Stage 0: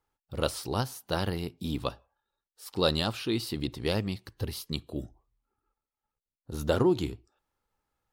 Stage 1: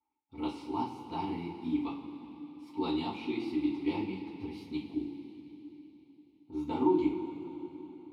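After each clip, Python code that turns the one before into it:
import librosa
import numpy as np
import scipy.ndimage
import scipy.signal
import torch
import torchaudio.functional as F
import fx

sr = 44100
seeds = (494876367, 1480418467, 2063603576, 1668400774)

y = fx.vowel_filter(x, sr, vowel='u')
y = fx.rev_double_slope(y, sr, seeds[0], early_s=0.27, late_s=3.8, knee_db=-18, drr_db=-9.0)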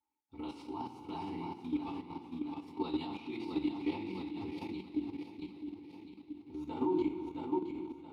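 y = fx.echo_feedback(x, sr, ms=667, feedback_pct=47, wet_db=-6)
y = fx.level_steps(y, sr, step_db=10)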